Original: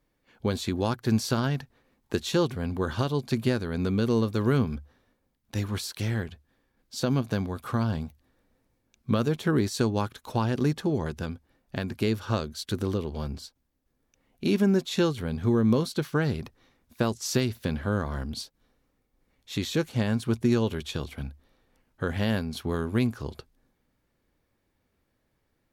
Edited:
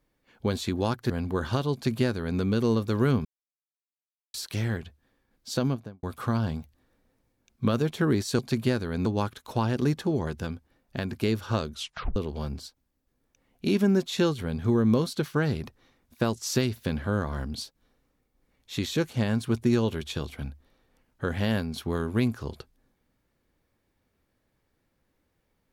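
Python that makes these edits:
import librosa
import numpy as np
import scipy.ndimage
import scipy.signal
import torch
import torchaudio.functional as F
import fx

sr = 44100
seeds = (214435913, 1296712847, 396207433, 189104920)

y = fx.studio_fade_out(x, sr, start_s=7.03, length_s=0.46)
y = fx.edit(y, sr, fx.cut(start_s=1.1, length_s=1.46),
    fx.duplicate(start_s=3.19, length_s=0.67, to_s=9.85),
    fx.silence(start_s=4.71, length_s=1.09),
    fx.tape_stop(start_s=12.51, length_s=0.44), tone=tone)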